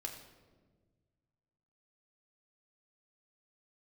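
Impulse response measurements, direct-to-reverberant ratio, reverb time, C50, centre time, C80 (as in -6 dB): 2.0 dB, 1.5 s, 7.0 dB, 29 ms, 8.5 dB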